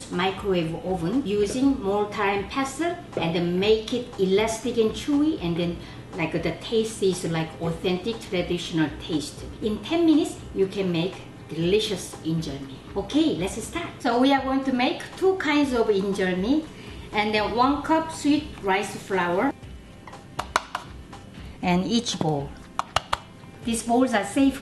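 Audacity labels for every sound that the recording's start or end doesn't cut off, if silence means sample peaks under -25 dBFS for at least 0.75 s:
20.390000	20.760000	sound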